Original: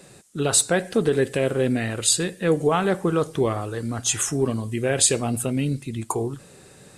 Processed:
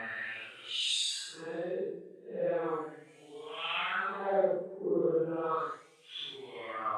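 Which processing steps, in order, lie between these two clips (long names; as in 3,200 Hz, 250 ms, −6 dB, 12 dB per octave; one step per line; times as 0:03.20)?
extreme stretch with random phases 4.1×, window 0.10 s, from 0:01.84
LFO wah 0.36 Hz 390–3,100 Hz, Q 3.7
dynamic equaliser 3,500 Hz, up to +5 dB, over −51 dBFS, Q 2.4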